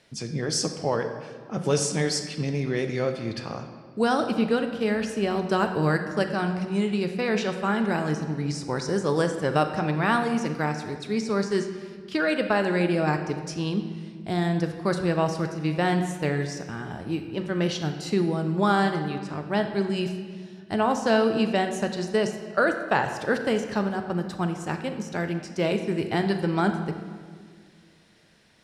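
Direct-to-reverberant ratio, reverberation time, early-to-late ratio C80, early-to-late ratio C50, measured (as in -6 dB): 6.0 dB, 1.8 s, 9.0 dB, 7.5 dB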